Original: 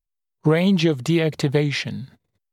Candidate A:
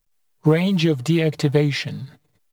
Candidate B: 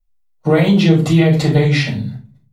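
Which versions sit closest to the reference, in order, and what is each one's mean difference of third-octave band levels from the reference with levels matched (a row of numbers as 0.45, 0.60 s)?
A, B; 2.0, 6.0 dB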